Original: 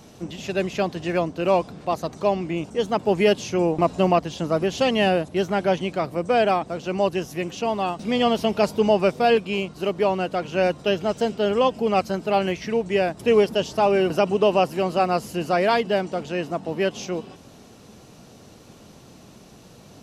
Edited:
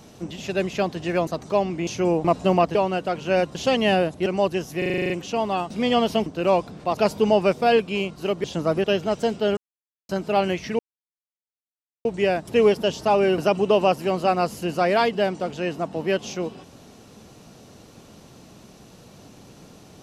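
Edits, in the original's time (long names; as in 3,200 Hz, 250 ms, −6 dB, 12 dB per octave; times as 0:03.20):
0:01.27–0:01.98: move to 0:08.55
0:02.58–0:03.41: remove
0:04.29–0:04.69: swap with 0:10.02–0:10.82
0:05.40–0:06.87: remove
0:07.39: stutter 0.04 s, 9 plays
0:11.55–0:12.07: silence
0:12.77: splice in silence 1.26 s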